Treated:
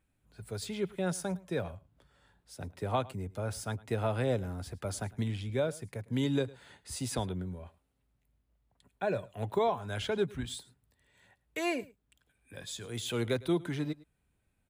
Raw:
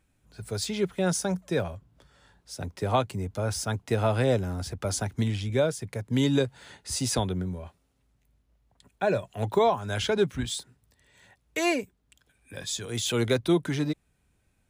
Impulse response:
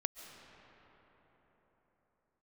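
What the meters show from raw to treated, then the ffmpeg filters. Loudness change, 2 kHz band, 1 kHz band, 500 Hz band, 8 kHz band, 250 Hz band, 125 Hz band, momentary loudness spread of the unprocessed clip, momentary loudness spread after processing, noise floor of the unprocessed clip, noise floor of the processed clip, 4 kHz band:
-6.5 dB, -7.0 dB, -6.5 dB, -6.5 dB, -10.0 dB, -6.5 dB, -6.5 dB, 13 LU, 13 LU, -71 dBFS, -77 dBFS, -8.5 dB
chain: -filter_complex "[0:a]equalizer=f=5800:w=1.8:g=-6.5,asplit=2[s0][s1];[s1]aecho=0:1:107:0.0841[s2];[s0][s2]amix=inputs=2:normalize=0,volume=0.473"

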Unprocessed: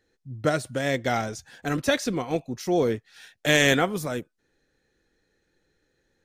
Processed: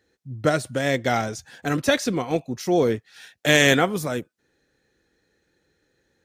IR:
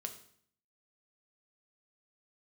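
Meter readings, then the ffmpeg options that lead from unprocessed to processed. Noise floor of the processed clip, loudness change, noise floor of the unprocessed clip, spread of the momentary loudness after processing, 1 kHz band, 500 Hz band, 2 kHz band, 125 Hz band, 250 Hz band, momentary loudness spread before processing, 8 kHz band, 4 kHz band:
-73 dBFS, +3.0 dB, -74 dBFS, 15 LU, +3.0 dB, +3.0 dB, +3.0 dB, +3.0 dB, +3.0 dB, 15 LU, +3.0 dB, +3.0 dB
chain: -af "highpass=51,volume=1.41"

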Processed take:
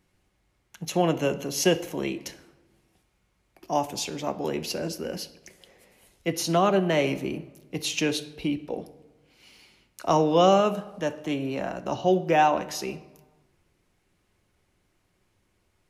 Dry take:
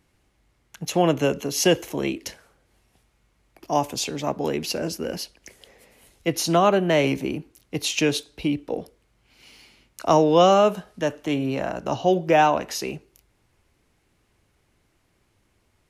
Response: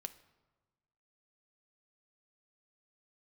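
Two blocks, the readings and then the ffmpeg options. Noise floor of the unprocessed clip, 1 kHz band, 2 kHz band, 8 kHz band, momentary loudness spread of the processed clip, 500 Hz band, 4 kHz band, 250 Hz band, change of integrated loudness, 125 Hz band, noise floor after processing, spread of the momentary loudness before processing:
-67 dBFS, -3.0 dB, -3.5 dB, -3.5 dB, 15 LU, -3.5 dB, -3.5 dB, -3.0 dB, -3.5 dB, -3.0 dB, -71 dBFS, 15 LU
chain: -filter_complex "[1:a]atrim=start_sample=2205[s0];[0:a][s0]afir=irnorm=-1:irlink=0"

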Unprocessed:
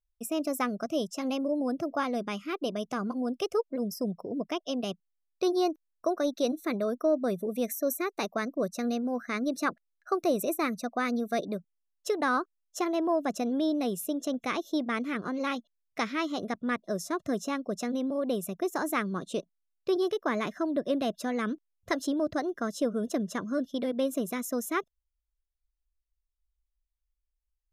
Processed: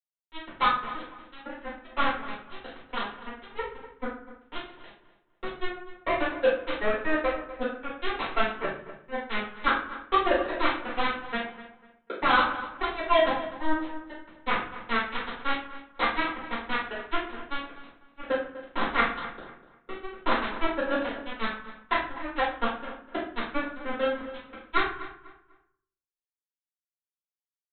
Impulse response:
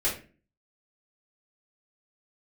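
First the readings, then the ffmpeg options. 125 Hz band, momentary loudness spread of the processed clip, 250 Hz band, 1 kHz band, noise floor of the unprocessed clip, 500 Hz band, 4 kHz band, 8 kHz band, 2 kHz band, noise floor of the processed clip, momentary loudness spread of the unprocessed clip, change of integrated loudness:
-4.0 dB, 16 LU, -6.5 dB, +6.0 dB, -82 dBFS, -1.0 dB, +5.0 dB, under -35 dB, +7.5 dB, under -85 dBFS, 5 LU, +1.5 dB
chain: -filter_complex "[0:a]acrossover=split=470 2600:gain=0.112 1 0.178[s0][s1][s2];[s0][s1][s2]amix=inputs=3:normalize=0,bandreject=f=60:t=h:w=6,bandreject=f=120:t=h:w=6,bandreject=f=180:t=h:w=6,bandreject=f=240:t=h:w=6,bandreject=f=300:t=h:w=6,bandreject=f=360:t=h:w=6,bandreject=f=420:t=h:w=6,flanger=delay=3.7:depth=4.1:regen=41:speed=0.27:shape=sinusoidal,aresample=8000,acrusher=bits=4:mix=0:aa=0.5,aresample=44100,asplit=2[s3][s4];[s4]adelay=247,lowpass=f=2500:p=1,volume=0.2,asplit=2[s5][s6];[s6]adelay=247,lowpass=f=2500:p=1,volume=0.31,asplit=2[s7][s8];[s8]adelay=247,lowpass=f=2500:p=1,volume=0.31[s9];[s3][s5][s7][s9]amix=inputs=4:normalize=0[s10];[1:a]atrim=start_sample=2205,asetrate=27783,aresample=44100[s11];[s10][s11]afir=irnorm=-1:irlink=0"

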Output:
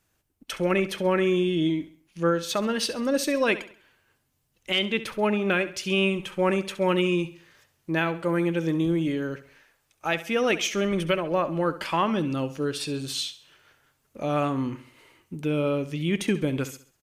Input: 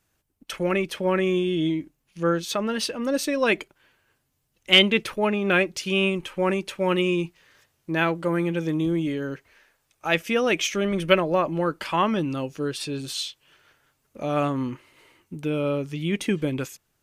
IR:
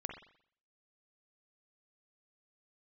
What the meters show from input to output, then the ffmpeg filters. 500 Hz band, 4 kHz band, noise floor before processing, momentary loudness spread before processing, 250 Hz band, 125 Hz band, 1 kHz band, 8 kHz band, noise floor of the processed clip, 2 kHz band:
-1.0 dB, -5.0 dB, -73 dBFS, 11 LU, -0.5 dB, -0.5 dB, -1.5 dB, -0.5 dB, -72 dBFS, -3.0 dB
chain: -filter_complex "[0:a]alimiter=limit=0.224:level=0:latency=1:release=371,asplit=2[s0][s1];[s1]aecho=0:1:67|134|201|268:0.188|0.0753|0.0301|0.0121[s2];[s0][s2]amix=inputs=2:normalize=0"

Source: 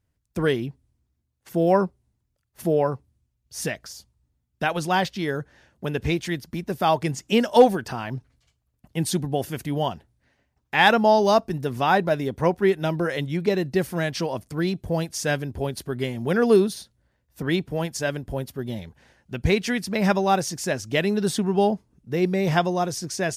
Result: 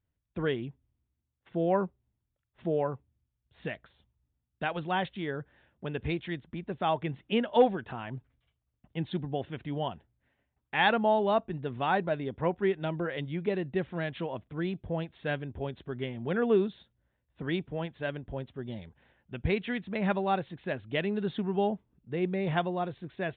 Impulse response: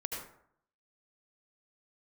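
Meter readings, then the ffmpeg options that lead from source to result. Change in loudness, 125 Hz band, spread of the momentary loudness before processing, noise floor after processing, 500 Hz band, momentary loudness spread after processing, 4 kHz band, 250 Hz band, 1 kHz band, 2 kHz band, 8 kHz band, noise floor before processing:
-8.0 dB, -8.0 dB, 13 LU, -83 dBFS, -8.0 dB, 13 LU, -10.0 dB, -8.0 dB, -8.0 dB, -8.0 dB, under -40 dB, -75 dBFS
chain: -af "aresample=8000,aresample=44100,volume=0.398"

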